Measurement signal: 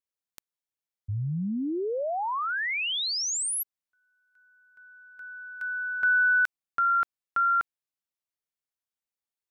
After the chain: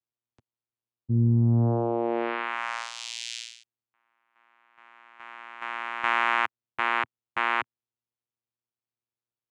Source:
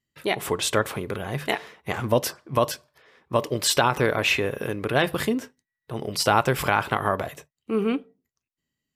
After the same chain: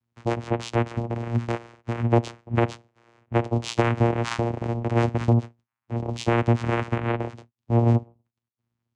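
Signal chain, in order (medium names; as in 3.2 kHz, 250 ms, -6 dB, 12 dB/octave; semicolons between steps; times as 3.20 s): dynamic bell 3.1 kHz, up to -5 dB, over -41 dBFS, Q 2.9; vocoder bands 4, saw 117 Hz; trim +2 dB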